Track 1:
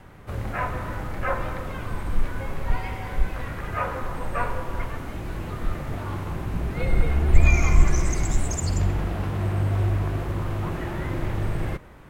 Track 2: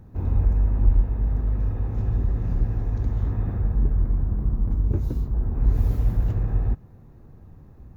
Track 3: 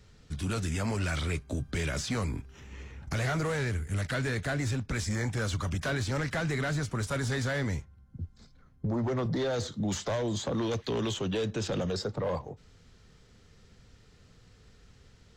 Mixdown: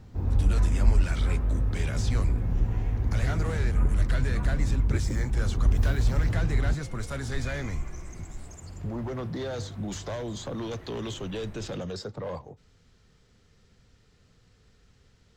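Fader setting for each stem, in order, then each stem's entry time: -18.0 dB, -2.5 dB, -3.5 dB; 0.00 s, 0.00 s, 0.00 s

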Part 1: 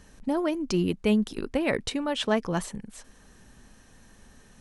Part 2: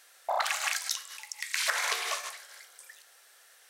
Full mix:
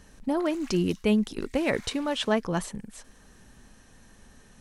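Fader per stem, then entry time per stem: 0.0 dB, -19.5 dB; 0.00 s, 0.00 s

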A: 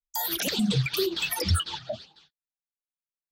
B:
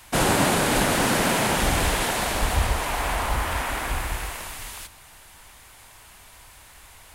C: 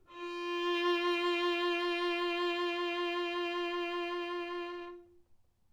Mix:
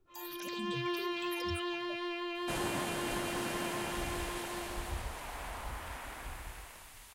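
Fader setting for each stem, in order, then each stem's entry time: -18.0 dB, -17.0 dB, -5.0 dB; 0.00 s, 2.35 s, 0.00 s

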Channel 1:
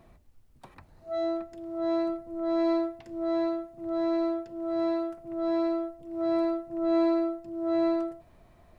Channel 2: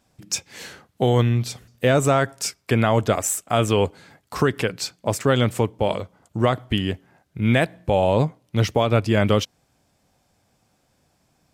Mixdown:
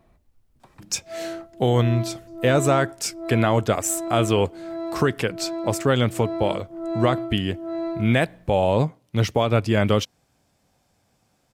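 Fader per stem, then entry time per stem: -2.5 dB, -1.0 dB; 0.00 s, 0.60 s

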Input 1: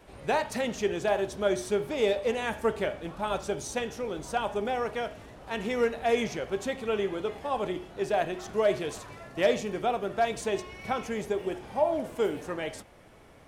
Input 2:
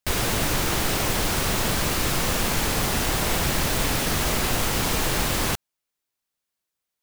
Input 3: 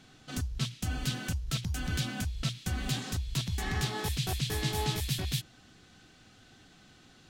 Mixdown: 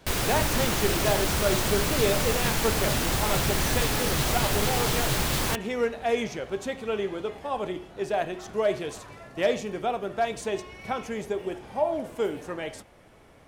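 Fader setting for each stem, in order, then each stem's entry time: 0.0 dB, -3.0 dB, -1.5 dB; 0.00 s, 0.00 s, 0.00 s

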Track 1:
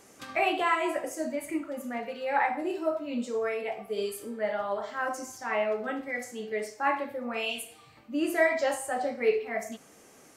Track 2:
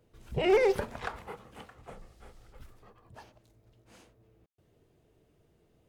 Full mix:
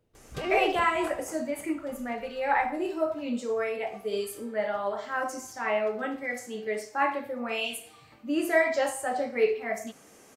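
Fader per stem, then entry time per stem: +1.0 dB, -5.5 dB; 0.15 s, 0.00 s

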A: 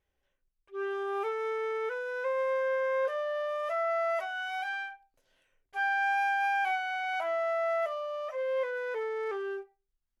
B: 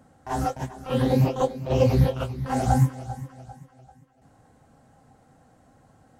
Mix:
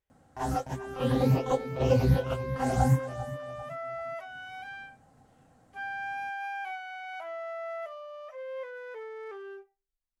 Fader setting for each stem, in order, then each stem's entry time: -7.5 dB, -4.0 dB; 0.00 s, 0.10 s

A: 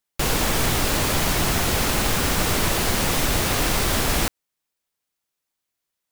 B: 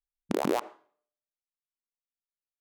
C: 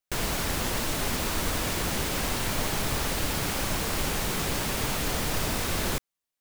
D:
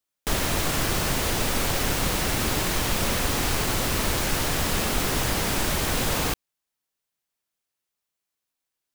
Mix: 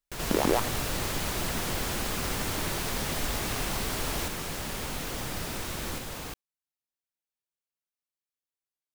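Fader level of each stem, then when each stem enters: -12.0 dB, +2.0 dB, -8.5 dB, -13.5 dB; 0.00 s, 0.00 s, 0.00 s, 0.00 s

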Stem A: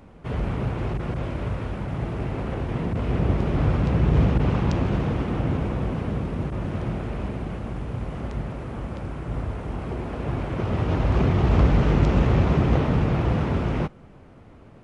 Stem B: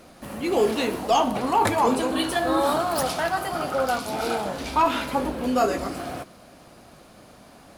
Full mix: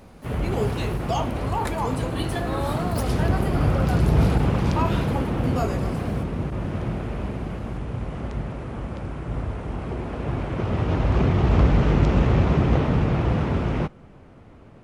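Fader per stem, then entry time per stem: +0.5 dB, -7.0 dB; 0.00 s, 0.00 s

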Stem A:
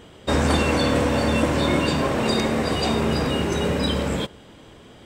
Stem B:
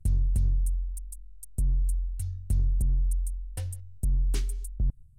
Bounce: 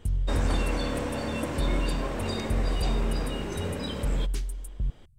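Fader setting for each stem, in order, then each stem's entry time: -10.5 dB, -2.5 dB; 0.00 s, 0.00 s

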